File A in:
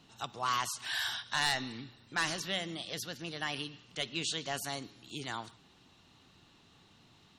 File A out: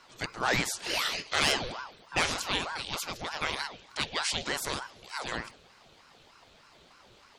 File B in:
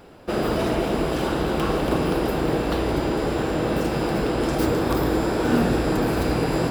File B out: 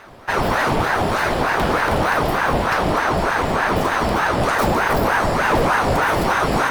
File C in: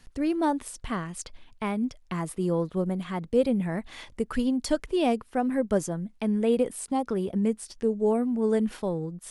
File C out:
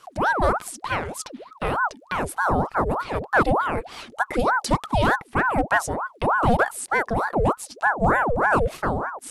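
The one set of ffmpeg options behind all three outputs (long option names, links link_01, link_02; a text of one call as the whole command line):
ffmpeg -i in.wav -af "asoftclip=type=hard:threshold=-17dB,aeval=exprs='val(0)*sin(2*PI*760*n/s+760*0.7/3.3*sin(2*PI*3.3*n/s))':channel_layout=same,volume=7.5dB" out.wav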